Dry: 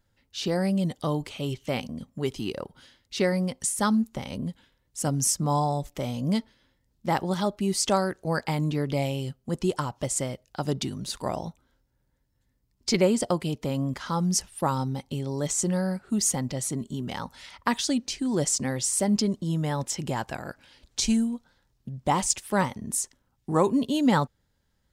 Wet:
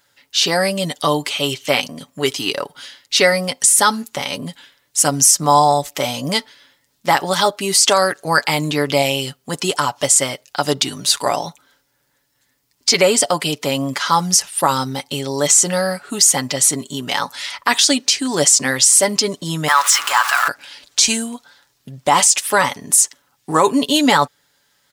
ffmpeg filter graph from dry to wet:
ffmpeg -i in.wav -filter_complex "[0:a]asettb=1/sr,asplit=3[link_01][link_02][link_03];[link_01]atrim=end=19.684[link_04];[link_02]atrim=start=19.68:end=20.48,asetpts=PTS-STARTPTS,afade=type=in:duration=0.004:curve=qsin,afade=type=out:start_time=0.796:duration=0.004:curve=qsin,aeval=exprs='val(0)+0.5*0.0178*sgn(val(0))':channel_layout=same,highpass=frequency=1200:width_type=q:width=4.9[link_05];[link_03]atrim=start=20.476[link_06];[link_04][link_05]acrossfade=duration=0.004:curve1=hsin:curve2=qsin[link_07];[link_07][link_06]acrossfade=duration=0.004:curve1=qsin:curve2=hsin,highpass=frequency=1400:poles=1,aecho=1:1:7:0.49,alimiter=level_in=19.5dB:limit=-1dB:release=50:level=0:latency=1,volume=-1dB" out.wav

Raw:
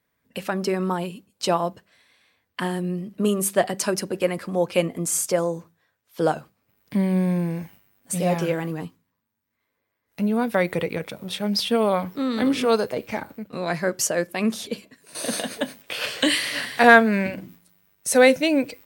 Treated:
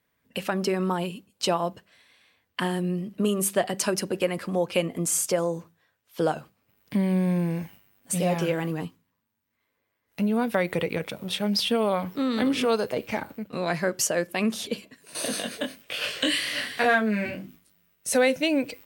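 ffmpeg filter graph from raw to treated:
ffmpeg -i in.wav -filter_complex "[0:a]asettb=1/sr,asplit=3[link_01][link_02][link_03];[link_01]atrim=end=15.284[link_04];[link_02]atrim=start=15.28:end=18.13,asetpts=PTS-STARTPTS,afade=type=in:duration=0.004:curve=qsin,afade=type=out:start_time=2.846:duration=0.004:curve=qsin,equalizer=frequency=880:width=5.9:gain=-6.5,flanger=delay=19:depth=5.1:speed=1.3[link_05];[link_03]atrim=start=18.126[link_06];[link_04][link_05]acrossfade=duration=0.004:curve1=hsin:curve2=qsin[link_07];[link_07][link_06]acrossfade=duration=0.004:curve1=qsin:curve2=hsin,equalizer=frequency=2900:width_type=o:width=0.4:gain=3.5,acompressor=threshold=-22dB:ratio=2" out.wav

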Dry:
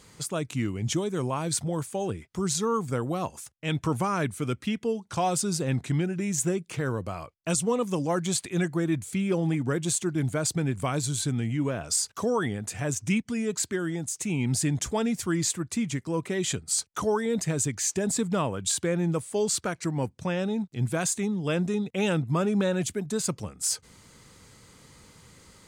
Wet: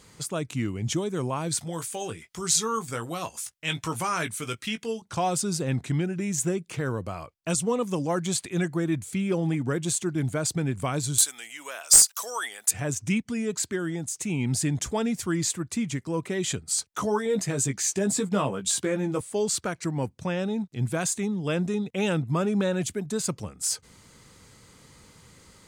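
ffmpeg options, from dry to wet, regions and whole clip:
ffmpeg -i in.wav -filter_complex "[0:a]asettb=1/sr,asplit=3[link_01][link_02][link_03];[link_01]atrim=end=1.594[link_04];[link_02]atrim=start=1.59:end=5.02,asetpts=PTS-STARTPTS,afade=type=in:duration=0.004:curve=qsin,afade=type=out:start_time=3.426:duration=0.004:curve=qsin,tiltshelf=frequency=1100:gain=-7,asplit=2[link_05][link_06];[link_06]adelay=18,volume=-8dB[link_07];[link_05][link_07]amix=inputs=2:normalize=0,atrim=end_sample=151263[link_08];[link_03]atrim=start=5.016[link_09];[link_04][link_08]acrossfade=duration=0.004:curve1=hsin:curve2=qsin[link_10];[link_10][link_09]acrossfade=duration=0.004:curve1=qsin:curve2=hsin,asettb=1/sr,asplit=3[link_11][link_12][link_13];[link_11]atrim=end=11.184[link_14];[link_12]atrim=start=11.18:end=12.71,asetpts=PTS-STARTPTS,afade=type=in:duration=0.004:curve=qsin,afade=type=out:start_time=1.526:duration=0.004:curve=qsin,highpass=790,aemphasis=mode=production:type=riaa,aeval=exprs='clip(val(0),-1,0.355)':channel_layout=same[link_15];[link_13]atrim=start=12.706[link_16];[link_14][link_15]acrossfade=duration=0.004:curve1=hsin:curve2=qsin[link_17];[link_17][link_16]acrossfade=duration=0.004:curve1=qsin:curve2=hsin,asettb=1/sr,asplit=3[link_18][link_19][link_20];[link_18]atrim=end=16.944[link_21];[link_19]atrim=start=16.94:end=19.21,asetpts=PTS-STARTPTS,afade=type=in:duration=0.004:curve=qsin,afade=type=out:start_time=2.266:duration=0.004:curve=qsin,highpass=110,asplit=2[link_22][link_23];[link_23]adelay=15,volume=-5dB[link_24];[link_22][link_24]amix=inputs=2:normalize=0,atrim=end_sample=100107[link_25];[link_20]atrim=start=19.206[link_26];[link_21][link_25]acrossfade=duration=0.004:curve1=hsin:curve2=qsin[link_27];[link_27][link_26]acrossfade=duration=0.004:curve1=qsin:curve2=hsin" out.wav

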